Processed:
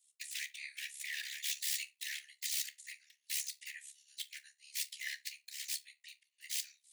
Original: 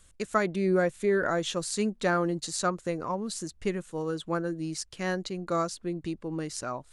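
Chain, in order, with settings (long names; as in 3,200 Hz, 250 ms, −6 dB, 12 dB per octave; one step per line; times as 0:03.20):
first difference
downward compressor 2 to 1, threshold −44 dBFS, peak gain reduction 8 dB
wrap-around overflow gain 39.5 dB
random phases in short frames
convolution reverb RT60 0.35 s, pre-delay 6 ms, DRR 8 dB
amplitude modulation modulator 70 Hz, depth 40%
Butterworth high-pass 1,800 Hz 96 dB per octave
high-shelf EQ 5,000 Hz −7.5 dB
multiband upward and downward expander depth 100%
level +14.5 dB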